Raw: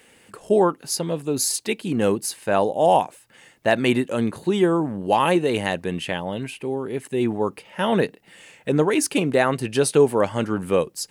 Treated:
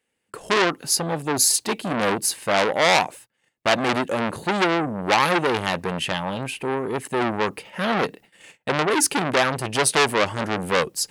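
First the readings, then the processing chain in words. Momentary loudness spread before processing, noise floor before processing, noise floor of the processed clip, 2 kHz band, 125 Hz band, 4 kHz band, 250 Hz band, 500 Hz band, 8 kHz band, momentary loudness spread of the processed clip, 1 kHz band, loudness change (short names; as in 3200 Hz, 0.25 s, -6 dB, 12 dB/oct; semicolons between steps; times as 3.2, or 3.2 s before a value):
9 LU, -55 dBFS, -75 dBFS, +6.0 dB, -3.0 dB, +6.0 dB, -3.5 dB, -3.0 dB, +5.0 dB, 9 LU, +1.5 dB, 0.0 dB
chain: gate -45 dBFS, range -28 dB; core saturation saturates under 3100 Hz; gain +5 dB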